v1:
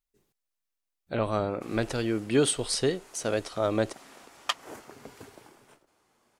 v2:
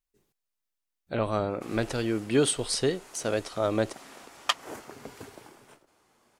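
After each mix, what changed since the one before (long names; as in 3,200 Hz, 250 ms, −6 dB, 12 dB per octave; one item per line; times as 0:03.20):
background +3.0 dB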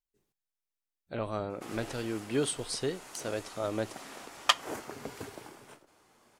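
speech −8.0 dB
reverb: on, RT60 0.30 s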